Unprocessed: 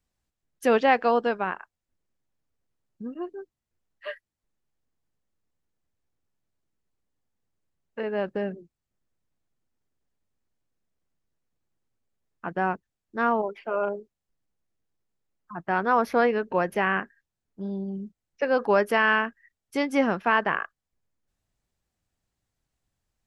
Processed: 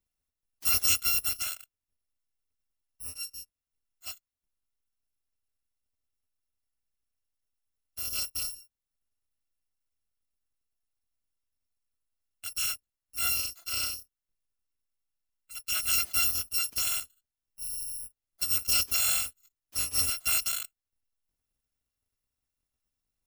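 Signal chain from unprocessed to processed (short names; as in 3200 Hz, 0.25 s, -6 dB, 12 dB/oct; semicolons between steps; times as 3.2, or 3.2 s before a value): FFT order left unsorted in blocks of 256 samples; gain -5 dB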